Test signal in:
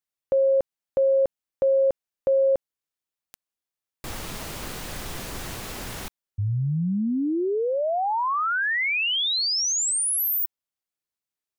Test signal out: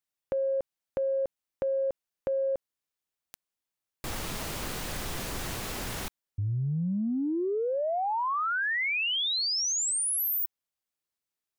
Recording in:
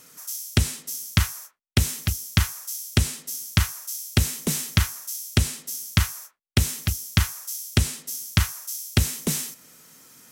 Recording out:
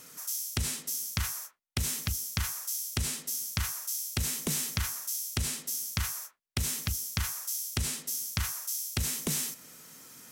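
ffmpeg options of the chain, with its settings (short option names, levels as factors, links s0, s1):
-af "acompressor=threshold=0.0398:ratio=6:attack=6.2:release=22:knee=6:detection=rms"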